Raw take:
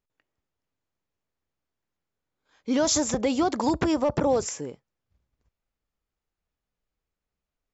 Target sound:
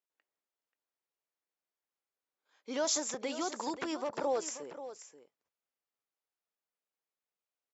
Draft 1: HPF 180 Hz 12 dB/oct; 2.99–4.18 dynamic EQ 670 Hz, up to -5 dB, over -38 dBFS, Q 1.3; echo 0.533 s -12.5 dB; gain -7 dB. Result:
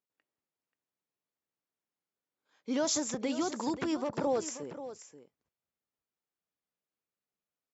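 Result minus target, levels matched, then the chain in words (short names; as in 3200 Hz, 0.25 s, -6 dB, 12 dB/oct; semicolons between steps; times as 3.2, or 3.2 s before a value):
250 Hz band +4.5 dB
HPF 430 Hz 12 dB/oct; 2.99–4.18 dynamic EQ 670 Hz, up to -5 dB, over -38 dBFS, Q 1.3; echo 0.533 s -12.5 dB; gain -7 dB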